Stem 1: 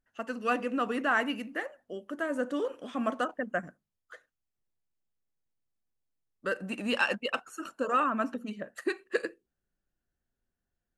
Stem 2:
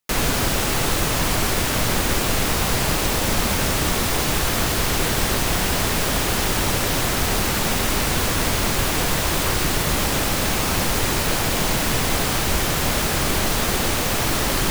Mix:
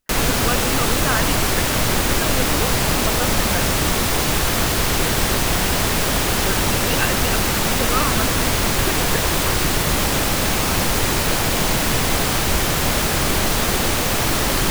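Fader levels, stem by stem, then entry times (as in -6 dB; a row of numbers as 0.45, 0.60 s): +3.0, +2.0 dB; 0.00, 0.00 s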